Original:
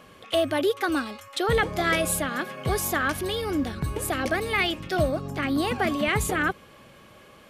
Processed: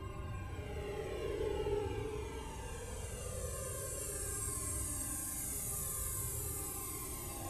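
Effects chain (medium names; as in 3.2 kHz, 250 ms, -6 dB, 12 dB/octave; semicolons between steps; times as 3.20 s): Doppler pass-by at 2.46 s, 16 m/s, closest 10 m; Paulstretch 48×, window 0.05 s, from 3.89 s; Shepard-style flanger falling 0.42 Hz; trim +1.5 dB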